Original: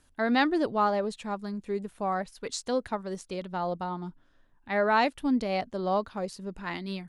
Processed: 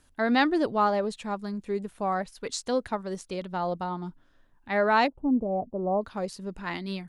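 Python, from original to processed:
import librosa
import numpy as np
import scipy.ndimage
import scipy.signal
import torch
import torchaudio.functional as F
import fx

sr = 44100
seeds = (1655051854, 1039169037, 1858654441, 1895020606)

y = fx.cheby2_lowpass(x, sr, hz=1700.0, order=4, stop_db=40, at=(5.06, 6.01), fade=0.02)
y = y * 10.0 ** (1.5 / 20.0)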